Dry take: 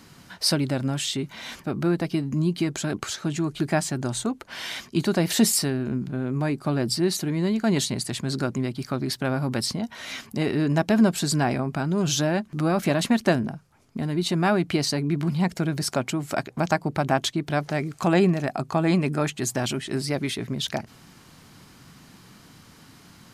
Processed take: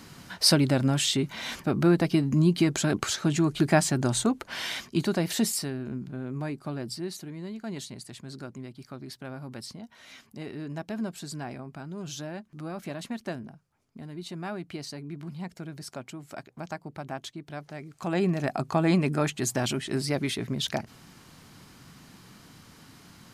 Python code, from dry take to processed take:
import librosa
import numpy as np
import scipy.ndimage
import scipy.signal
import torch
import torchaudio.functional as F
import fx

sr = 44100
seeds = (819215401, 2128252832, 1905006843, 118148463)

y = fx.gain(x, sr, db=fx.line((4.47, 2.0), (5.53, -7.5), (6.42, -7.5), (7.38, -14.0), (17.85, -14.0), (18.46, -1.5)))